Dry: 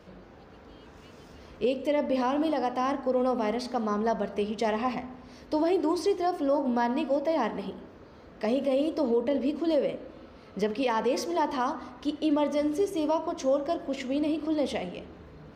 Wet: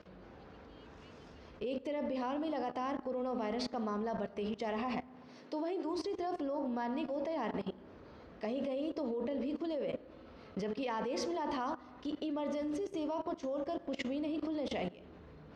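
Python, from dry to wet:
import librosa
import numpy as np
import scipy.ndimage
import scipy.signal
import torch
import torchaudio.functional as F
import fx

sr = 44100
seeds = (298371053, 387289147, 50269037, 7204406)

y = scipy.signal.sosfilt(scipy.signal.butter(2, 5600.0, 'lowpass', fs=sr, output='sos'), x)
y = fx.level_steps(y, sr, step_db=18)
y = fx.highpass(y, sr, hz=fx.line((5.08, 79.0), (5.83, 290.0)), slope=24, at=(5.08, 5.83), fade=0.02)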